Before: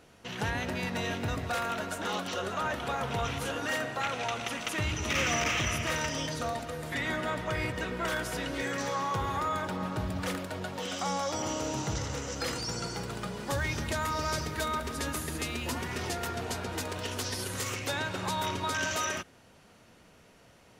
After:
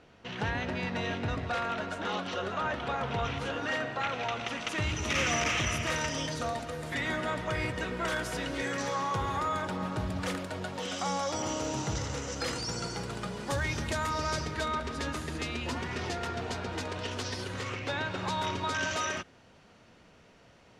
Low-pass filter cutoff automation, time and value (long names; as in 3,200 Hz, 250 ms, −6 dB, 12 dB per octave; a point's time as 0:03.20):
0:04.35 4,300 Hz
0:05.05 10,000 Hz
0:13.93 10,000 Hz
0:14.77 5,400 Hz
0:17.29 5,400 Hz
0:17.74 3,100 Hz
0:18.36 5,900 Hz